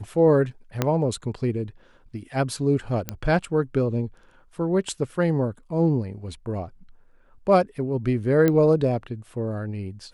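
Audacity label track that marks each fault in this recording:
0.820000	0.820000	pop -7 dBFS
3.090000	3.090000	pop -11 dBFS
8.480000	8.480000	pop -9 dBFS

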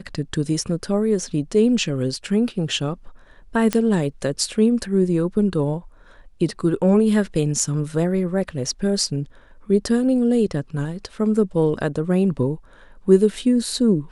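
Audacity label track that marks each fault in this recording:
3.730000	3.730000	pop -7 dBFS

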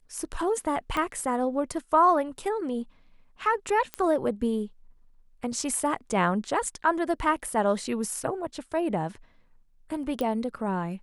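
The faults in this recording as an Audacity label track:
0.970000	0.970000	pop -15 dBFS
3.940000	3.940000	pop -16 dBFS
10.210000	10.210000	pop -18 dBFS

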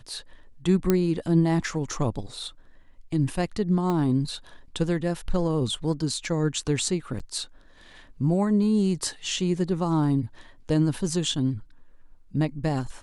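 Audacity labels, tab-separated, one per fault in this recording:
0.900000	0.900000	pop -8 dBFS
3.900000	3.900000	pop -16 dBFS
7.190000	7.200000	dropout 7.3 ms

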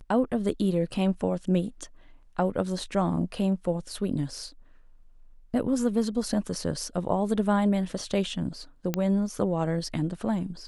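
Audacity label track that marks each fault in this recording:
8.940000	8.940000	pop -12 dBFS

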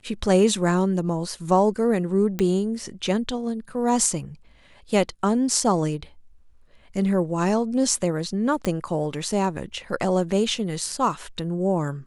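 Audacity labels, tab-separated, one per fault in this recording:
2.390000	2.390000	pop -12 dBFS
8.650000	8.650000	pop -12 dBFS

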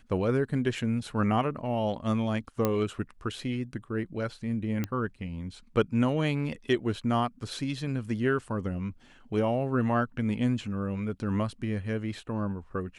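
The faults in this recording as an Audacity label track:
2.650000	2.650000	pop -12 dBFS
4.840000	4.840000	pop -17 dBFS

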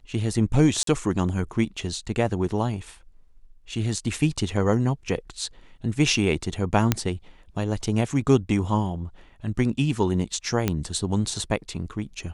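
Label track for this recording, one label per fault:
0.830000	0.870000	dropout 43 ms
6.920000	6.920000	pop -4 dBFS
10.680000	10.680000	pop -8 dBFS

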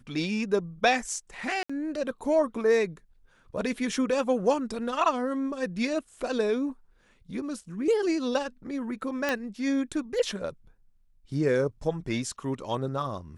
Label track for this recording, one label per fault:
1.630000	1.700000	dropout 65 ms
9.290000	9.290000	pop -13 dBFS

